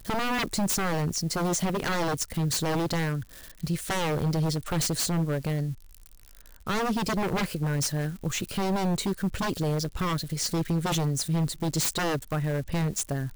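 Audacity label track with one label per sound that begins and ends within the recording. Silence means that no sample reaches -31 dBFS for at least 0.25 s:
3.640000	5.730000	sound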